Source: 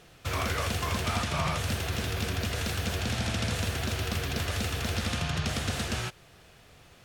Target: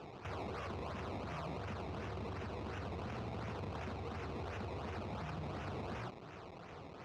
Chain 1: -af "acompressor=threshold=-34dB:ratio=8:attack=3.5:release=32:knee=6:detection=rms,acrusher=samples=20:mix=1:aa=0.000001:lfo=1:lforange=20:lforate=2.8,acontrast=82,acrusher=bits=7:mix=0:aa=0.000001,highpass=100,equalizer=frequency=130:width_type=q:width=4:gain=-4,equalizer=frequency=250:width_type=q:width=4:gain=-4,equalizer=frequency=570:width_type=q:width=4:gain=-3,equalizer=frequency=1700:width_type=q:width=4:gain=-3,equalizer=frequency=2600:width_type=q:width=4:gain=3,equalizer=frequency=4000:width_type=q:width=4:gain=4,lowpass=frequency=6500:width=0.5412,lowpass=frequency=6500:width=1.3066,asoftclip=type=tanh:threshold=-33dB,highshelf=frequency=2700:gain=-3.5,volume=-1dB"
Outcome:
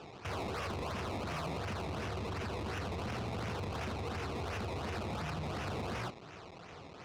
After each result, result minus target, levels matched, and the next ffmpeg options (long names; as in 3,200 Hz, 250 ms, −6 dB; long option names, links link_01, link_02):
downward compressor: peak gain reduction −7 dB; 4,000 Hz band +3.5 dB
-af "acompressor=threshold=-42dB:ratio=8:attack=3.5:release=32:knee=6:detection=rms,acrusher=samples=20:mix=1:aa=0.000001:lfo=1:lforange=20:lforate=2.8,acontrast=82,acrusher=bits=7:mix=0:aa=0.000001,highpass=100,equalizer=frequency=130:width_type=q:width=4:gain=-4,equalizer=frequency=250:width_type=q:width=4:gain=-4,equalizer=frequency=570:width_type=q:width=4:gain=-3,equalizer=frequency=1700:width_type=q:width=4:gain=-3,equalizer=frequency=2600:width_type=q:width=4:gain=3,equalizer=frequency=4000:width_type=q:width=4:gain=4,lowpass=frequency=6500:width=0.5412,lowpass=frequency=6500:width=1.3066,asoftclip=type=tanh:threshold=-33dB,highshelf=frequency=2700:gain=-3.5,volume=-1dB"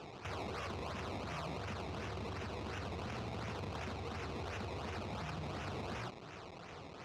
4,000 Hz band +4.5 dB
-af "acompressor=threshold=-42dB:ratio=8:attack=3.5:release=32:knee=6:detection=rms,acrusher=samples=20:mix=1:aa=0.000001:lfo=1:lforange=20:lforate=2.8,acontrast=82,acrusher=bits=7:mix=0:aa=0.000001,highpass=100,equalizer=frequency=130:width_type=q:width=4:gain=-4,equalizer=frequency=250:width_type=q:width=4:gain=-4,equalizer=frequency=570:width_type=q:width=4:gain=-3,equalizer=frequency=1700:width_type=q:width=4:gain=-3,equalizer=frequency=2600:width_type=q:width=4:gain=3,equalizer=frequency=4000:width_type=q:width=4:gain=4,lowpass=frequency=6500:width=0.5412,lowpass=frequency=6500:width=1.3066,asoftclip=type=tanh:threshold=-33dB,highshelf=frequency=2700:gain=-12,volume=-1dB"